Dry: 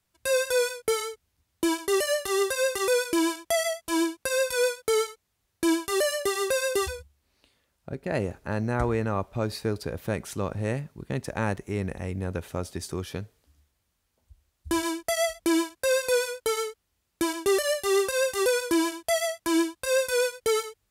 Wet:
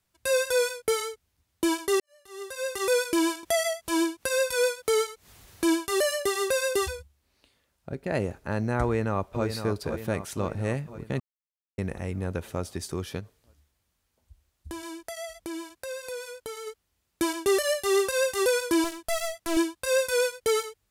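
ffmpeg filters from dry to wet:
-filter_complex "[0:a]asettb=1/sr,asplit=3[a][b][c];[a]atrim=end=3.434[d];[b]atrim=start=3.43:end=5.71,asetpts=PTS-STARTPTS,afade=t=in:d=0.004:c=qsin,afade=t=out:st=2.276:d=0.004:c=qsin,acompressor=mode=upward:threshold=-32dB:ratio=2.5:attack=3.2:release=140:knee=2.83:detection=peak[e];[c]atrim=start=5.706[f];[d][e]acrossfade=d=0.004:c1=hsin:c2=qsin[g];[g][f]acrossfade=d=0.004:c1=qsin:c2=hsin,asplit=2[h][i];[i]afade=t=in:st=8.83:d=0.01,afade=t=out:st=9.45:d=0.01,aecho=0:1:510|1020|1530|2040|2550|3060|3570|4080:0.398107|0.238864|0.143319|0.0859911|0.0515947|0.0309568|0.0185741|0.0111445[j];[h][j]amix=inputs=2:normalize=0,asplit=3[k][l][m];[k]afade=t=out:st=13.19:d=0.02[n];[l]acompressor=threshold=-38dB:ratio=3:attack=3.2:release=140:knee=1:detection=peak,afade=t=in:st=13.19:d=0.02,afade=t=out:st=16.66:d=0.02[o];[m]afade=t=in:st=16.66:d=0.02[p];[n][o][p]amix=inputs=3:normalize=0,asettb=1/sr,asplit=3[q][r][s];[q]atrim=end=18.844[t];[r]atrim=start=18.84:end=19.57,asetpts=PTS-STARTPTS,afade=t=in:d=0.004:c=qsin,afade=t=out:st=0.726:d=0.004:c=qsin,aeval=exprs='clip(val(0),-1,0.0126)':c=same[u];[s]atrim=start=19.566[v];[t][u]acrossfade=d=0.004:c1=hsin:c2=qsin[w];[w][v]acrossfade=d=0.004:c1=qsin:c2=hsin,asplit=4[x][y][z][aa];[x]atrim=end=2,asetpts=PTS-STARTPTS,afade=t=out:st=1.996:d=0.004:c=hsin[ab];[y]atrim=start=2:end=11.2,asetpts=PTS-STARTPTS,afade=t=in:d=0.92:c=qua,afade=t=out:st=9.196:d=0.004:c=hsin[ac];[z]atrim=start=11.2:end=11.78,asetpts=PTS-STARTPTS,volume=0[ad];[aa]atrim=start=11.78,asetpts=PTS-STARTPTS,afade=t=in:d=0.004:c=hsin[ae];[ab][ac][ad][ae]concat=n=4:v=0:a=1"

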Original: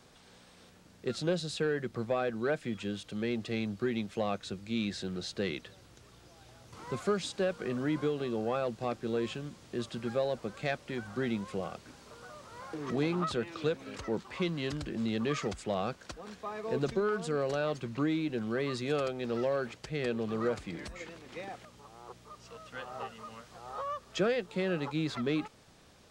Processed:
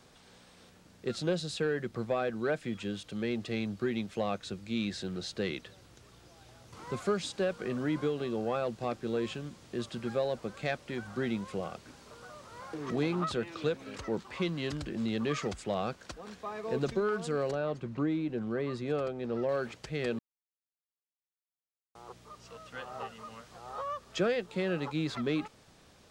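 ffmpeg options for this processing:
-filter_complex "[0:a]asettb=1/sr,asplit=3[a][b][c];[a]atrim=end=17.514[d];[b]atrim=start=17.51:end=19.49,asetpts=PTS-STARTPTS,afade=t=in:d=0.004:c=qsin,afade=t=out:st=1.976:d=0.004:c=qsin,highshelf=f=2k:g=-11[e];[c]atrim=start=19.486[f];[d][e]acrossfade=d=0.004:c1=hsin:c2=qsin[g];[g][f]acrossfade=d=0.004:c1=qsin:c2=hsin,asplit=3[h][i][j];[h]atrim=end=20.19,asetpts=PTS-STARTPTS,afade=t=out:st=20.186:d=0.004:c=hsin[k];[i]atrim=start=20.19:end=21.95,asetpts=PTS-STARTPTS,volume=0[l];[j]atrim=start=21.95,asetpts=PTS-STARTPTS,afade=t=in:d=0.004:c=hsin[m];[k][l][m]concat=n=3:v=0:a=1"

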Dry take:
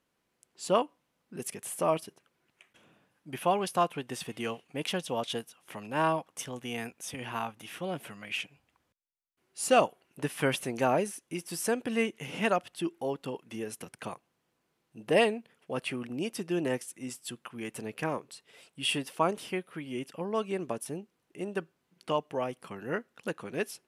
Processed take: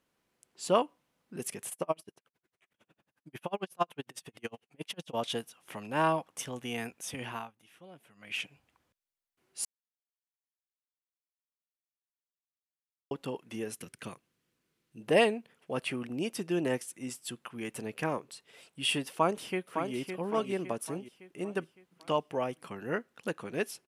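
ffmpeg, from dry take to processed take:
-filter_complex "[0:a]asplit=3[a][b][c];[a]afade=t=out:st=1.69:d=0.02[d];[b]aeval=exprs='val(0)*pow(10,-39*(0.5-0.5*cos(2*PI*11*n/s))/20)':c=same,afade=t=in:st=1.69:d=0.02,afade=t=out:st=5.13:d=0.02[e];[c]afade=t=in:st=5.13:d=0.02[f];[d][e][f]amix=inputs=3:normalize=0,asettb=1/sr,asplit=3[g][h][i];[g]atrim=end=13.774[j];[h]atrim=start=13.77:end=15.02,asetpts=PTS-STARTPTS,afade=t=in:d=0.004:c=qsin,afade=t=out:st=1.246:d=0.004:c=qsin,equalizer=f=790:t=o:w=1.1:g=-11[k];[i]atrim=start=15.016[l];[j][k]acrossfade=d=0.004:c1=hsin:c2=qsin[m];[m][l]acrossfade=d=0.004:c1=qsin:c2=hsin,asplit=2[n][o];[o]afade=t=in:st=19.11:d=0.01,afade=t=out:st=19.96:d=0.01,aecho=0:1:560|1120|1680|2240|2800:0.473151|0.212918|0.0958131|0.0431159|0.0194022[p];[n][p]amix=inputs=2:normalize=0,asplit=5[q][r][s][t][u];[q]atrim=end=7.51,asetpts=PTS-STARTPTS,afade=t=out:st=7.25:d=0.26:silence=0.141254[v];[r]atrim=start=7.51:end=8.15,asetpts=PTS-STARTPTS,volume=-17dB[w];[s]atrim=start=8.15:end=9.65,asetpts=PTS-STARTPTS,afade=t=in:d=0.26:silence=0.141254,afade=t=out:st=1.496:d=0.004:c=hsin[x];[t]atrim=start=9.65:end=13.11,asetpts=PTS-STARTPTS,volume=0[y];[u]atrim=start=13.11,asetpts=PTS-STARTPTS,afade=t=in:d=0.004:c=hsin[z];[v][w][x][y][z]concat=n=5:v=0:a=1"

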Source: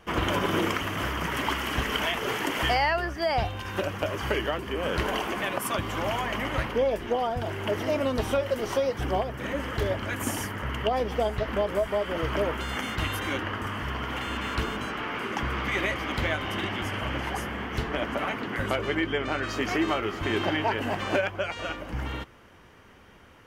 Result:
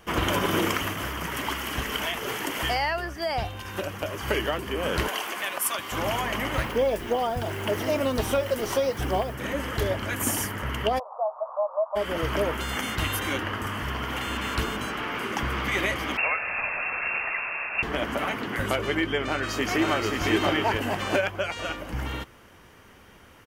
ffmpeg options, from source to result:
-filter_complex "[0:a]asettb=1/sr,asplit=3[a][b][c];[a]atrim=end=5.084[d];[b]atrim=start=5.08:end=5.92,asetpts=PTS-STARTPTS,afade=t=in:d=0.004:c=qsin,afade=t=out:st=0.836:d=0.004:c=qsin,highpass=f=1k:p=1[e];[c]atrim=start=5.916[f];[d][e]acrossfade=d=0.004:c1=hsin:c2=qsin[g];[g][f]acrossfade=d=0.004:c1=qsin:c2=hsin,asettb=1/sr,asplit=3[h][i][j];[h]atrim=end=6.524[k];[i]atrim=start=6.52:end=9.34,asetpts=PTS-STARTPTS,afade=t=in:d=0.004:c=qsin,afade=t=out:st=2.816:d=0.004:c=qsin,acrusher=bits=8:mix=0:aa=0.5[l];[j]atrim=start=9.336[m];[k][l]acrossfade=d=0.004:c1=hsin:c2=qsin[n];[n][m]acrossfade=d=0.004:c1=qsin:c2=hsin,asplit=3[o][p][q];[o]afade=t=out:st=10.98:d=0.02[r];[p]asuperpass=centerf=820:order=12:qfactor=1.3,afade=t=in:st=10.98:d=0.02,afade=t=out:st=11.95:d=0.02[s];[q]afade=t=in:st=11.95:d=0.02[t];[r][s][t]amix=inputs=3:normalize=0,asettb=1/sr,asplit=3[u][v][w];[u]atrim=end=16.174[x];[v]atrim=start=16.17:end=17.83,asetpts=PTS-STARTPTS,afade=t=in:d=0.004:c=qsin,afade=t=out:st=1.656:d=0.004:c=qsin,lowpass=f=2.4k:t=q:w=0.5098,lowpass=f=2.4k:t=q:w=0.6013,lowpass=f=2.4k:t=q:w=0.9,lowpass=f=2.4k:t=q:w=2.563,afreqshift=-2800[y];[w]atrim=start=17.826[z];[x][y]acrossfade=d=0.004:c1=hsin:c2=qsin[aa];[aa][z]acrossfade=d=0.004:c1=qsin:c2=hsin,asplit=2[ab][ac];[ac]afade=t=in:st=19.23:d=0.01,afade=t=out:st=20.24:d=0.01,aecho=0:1:530|1060:0.707946|0.0707946[ad];[ab][ad]amix=inputs=2:normalize=0,asplit=3[ae][af][ag];[ae]atrim=end=0.932[ah];[af]atrim=start=0.928:end=4.282,asetpts=PTS-STARTPTS,volume=-3.5dB[ai];[ag]atrim=start=4.278[aj];[ah][ai]acrossfade=d=0.004:c1=hsin:c2=hsin[ak];[ak][aj]acrossfade=d=0.004:c1=hsin:c2=hsin,highshelf=f=6.8k:g=10,volume=1dB"

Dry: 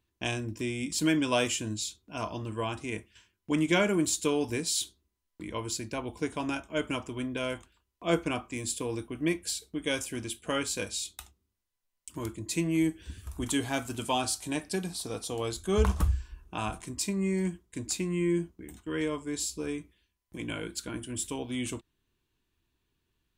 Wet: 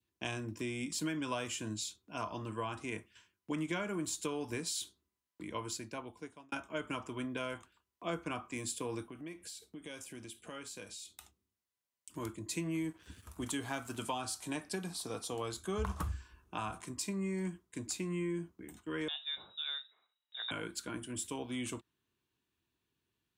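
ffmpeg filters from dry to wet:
-filter_complex "[0:a]asettb=1/sr,asplit=3[a][b][c];[a]atrim=end=9.064[d];[b]atrim=start=9.06:end=12.15,asetpts=PTS-STARTPTS,afade=t=in:d=0.004:c=qsin,afade=t=out:st=3.086:d=0.004:c=qsin,acompressor=threshold=-42dB:ratio=3:attack=3.2:release=140:knee=1:detection=peak[e];[c]atrim=start=12.146[f];[d][e]acrossfade=d=0.004:c1=hsin:c2=qsin[g];[g][f]acrossfade=d=0.004:c1=qsin:c2=hsin,asettb=1/sr,asplit=3[h][i][j];[h]atrim=end=12.784[k];[i]atrim=start=12.78:end=13.98,asetpts=PTS-STARTPTS,afade=t=in:d=0.004:c=qsin,afade=t=out:st=1.196:d=0.004:c=qsin,aeval=exprs='sgn(val(0))*max(abs(val(0))-0.00158,0)':c=same[l];[j]atrim=start=13.976[m];[k][l]acrossfade=d=0.004:c1=hsin:c2=qsin[n];[n][m]acrossfade=d=0.004:c1=qsin:c2=hsin,asettb=1/sr,asplit=3[o][p][q];[o]atrim=end=19.084[r];[p]atrim=start=19.08:end=20.51,asetpts=PTS-STARTPTS,afade=t=in:d=0.004:c=qsin,afade=t=out:st=1.426:d=0.004:c=qsin,lowpass=f=3.3k:t=q:w=0.5098,lowpass=f=3.3k:t=q:w=0.6013,lowpass=f=3.3k:t=q:w=0.9,lowpass=f=3.3k:t=q:w=2.563,afreqshift=-3900[s];[q]atrim=start=20.506[t];[r][s]acrossfade=d=0.004:c1=hsin:c2=qsin[u];[u][t]acrossfade=d=0.004:c1=qsin:c2=hsin,asplit=2[v][w];[v]atrim=end=6.52,asetpts=PTS-STARTPTS,afade=t=out:st=5.55:d=0.97[x];[w]atrim=start=6.52,asetpts=PTS-STARTPTS,afade=t=in:d=0.004:c=hsin[y];[x][y]concat=n=2:v=0:a=1,highpass=100,adynamicequalizer=threshold=0.00447:dfrequency=1200:dqfactor=1.3:tfrequency=1200:tqfactor=1.3:attack=5:release=100:ratio=0.375:range=3.5:mode=boostabove:tftype=bell,acrossover=split=130[z][aa];[aa]acompressor=threshold=-30dB:ratio=6[ab];[z][ab]amix=inputs=2:normalize=0,volume=-4.5dB"

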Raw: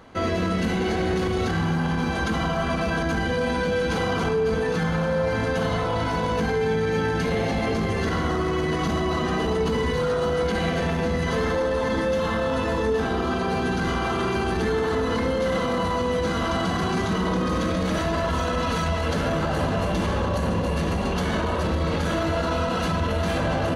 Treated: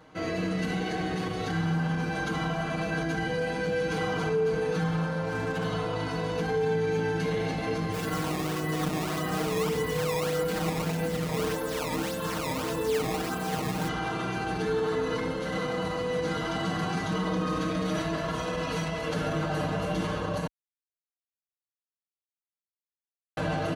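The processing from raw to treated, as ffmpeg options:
-filter_complex "[0:a]asettb=1/sr,asplit=3[a][b][c];[a]atrim=end=5.234[d];[b]atrim=start=5.23:end=5.64,asetpts=PTS-STARTPTS,afade=t=in:d=0.004:c=qsin,afade=t=out:st=0.406:d=0.004:c=qsin,adynamicsmooth=sensitivity=7.5:basefreq=1.2k[e];[c]atrim=start=5.636[f];[d][e]acrossfade=d=0.004:c1=hsin:c2=qsin[g];[g][f]acrossfade=d=0.004:c1=qsin:c2=hsin,asplit=3[h][i][j];[h]afade=t=out:st=7.92:d=0.02[k];[i]acrusher=samples=17:mix=1:aa=0.000001:lfo=1:lforange=27.2:lforate=1.7,afade=t=in:st=7.92:d=0.02,afade=t=out:st=13.87:d=0.02[l];[j]afade=t=in:st=13.87:d=0.02[m];[k][l][m]amix=inputs=3:normalize=0,asplit=3[n][o][p];[n]atrim=end=20.47,asetpts=PTS-STARTPTS,afade=t=out:st=20.466:d=0.004:c=hsin[q];[o]atrim=start=20.47:end=23.37,asetpts=PTS-STARTPTS,volume=0[r];[p]atrim=start=23.37,asetpts=PTS-STARTPTS,afade=t=in:d=0.004:c=hsin[s];[q][r][s]concat=n=3:v=0:a=1,highpass=44,aecho=1:1:6.5:0.96,volume=-8dB"

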